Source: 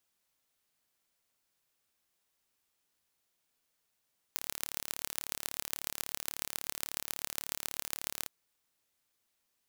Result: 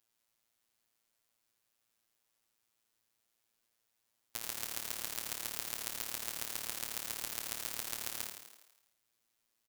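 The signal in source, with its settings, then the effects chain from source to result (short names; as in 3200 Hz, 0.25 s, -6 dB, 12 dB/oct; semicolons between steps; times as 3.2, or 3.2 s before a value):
pulse train 36.4/s, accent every 5, -5.5 dBFS 3.92 s
robotiser 114 Hz; on a send: frequency-shifting echo 82 ms, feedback 60%, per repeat +82 Hz, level -7 dB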